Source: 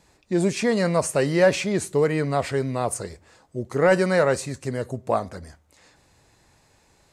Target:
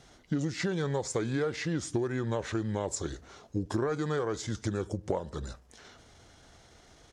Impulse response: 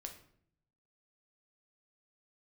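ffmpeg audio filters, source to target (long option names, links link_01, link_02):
-af "acompressor=threshold=-30dB:ratio=16,asetrate=36028,aresample=44100,atempo=1.22405,volume=3dB"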